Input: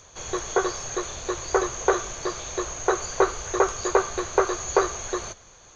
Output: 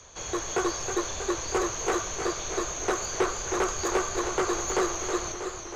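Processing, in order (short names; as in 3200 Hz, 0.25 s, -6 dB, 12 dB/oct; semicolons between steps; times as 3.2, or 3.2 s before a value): frequency shift -13 Hz; soft clip -21 dBFS, distortion -7 dB; warbling echo 0.318 s, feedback 69%, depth 57 cents, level -8 dB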